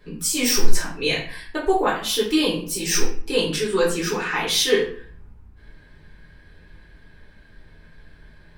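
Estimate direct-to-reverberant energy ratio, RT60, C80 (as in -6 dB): -7.5 dB, 0.50 s, 10.0 dB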